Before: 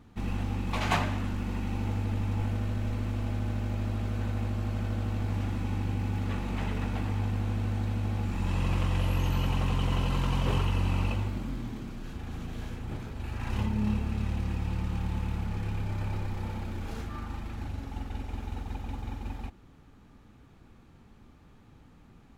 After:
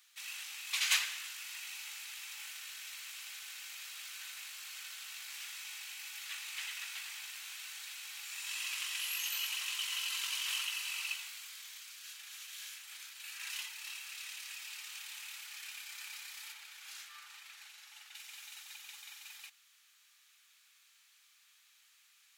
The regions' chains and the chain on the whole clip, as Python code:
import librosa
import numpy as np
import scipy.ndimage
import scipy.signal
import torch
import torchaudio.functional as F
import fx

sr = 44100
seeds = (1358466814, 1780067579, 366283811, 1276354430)

y = fx.chain(x, sr, fx.highpass(hz=240.0, slope=12),
    fx.tilt_eq(slope=-2.0), at=(16.52, 18.15))
y = scipy.signal.sosfilt(scipy.signal.bessel(4, 2700.0, 'highpass', norm='mag', fs=sr, output='sos'), y)
y = fx.high_shelf(y, sr, hz=4400.0, db=10.5)
y = y * 10.0 ** (4.0 / 20.0)